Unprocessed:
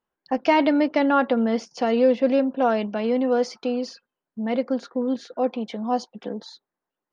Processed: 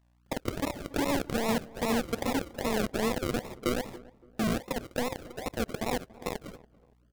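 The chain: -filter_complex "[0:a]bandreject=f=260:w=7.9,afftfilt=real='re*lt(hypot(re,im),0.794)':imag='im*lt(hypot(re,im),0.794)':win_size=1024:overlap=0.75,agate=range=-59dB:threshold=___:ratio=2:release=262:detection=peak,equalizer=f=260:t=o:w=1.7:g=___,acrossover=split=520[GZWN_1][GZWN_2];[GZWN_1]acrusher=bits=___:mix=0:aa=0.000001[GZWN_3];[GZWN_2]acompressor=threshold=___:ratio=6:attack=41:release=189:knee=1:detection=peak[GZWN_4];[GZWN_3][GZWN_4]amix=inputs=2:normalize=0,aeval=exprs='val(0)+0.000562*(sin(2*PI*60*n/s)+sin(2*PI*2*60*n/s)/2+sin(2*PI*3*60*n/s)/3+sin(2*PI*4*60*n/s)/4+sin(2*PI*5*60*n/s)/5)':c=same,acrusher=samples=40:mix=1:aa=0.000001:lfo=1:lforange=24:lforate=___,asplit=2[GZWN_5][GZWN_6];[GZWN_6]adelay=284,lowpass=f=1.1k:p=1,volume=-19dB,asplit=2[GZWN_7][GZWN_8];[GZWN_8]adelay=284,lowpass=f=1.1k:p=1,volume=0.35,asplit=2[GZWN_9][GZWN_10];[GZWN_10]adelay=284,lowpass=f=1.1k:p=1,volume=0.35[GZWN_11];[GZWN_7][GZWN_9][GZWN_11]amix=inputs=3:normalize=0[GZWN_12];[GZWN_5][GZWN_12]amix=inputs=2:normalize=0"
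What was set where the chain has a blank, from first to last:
-41dB, -3.5, 4, -40dB, 2.5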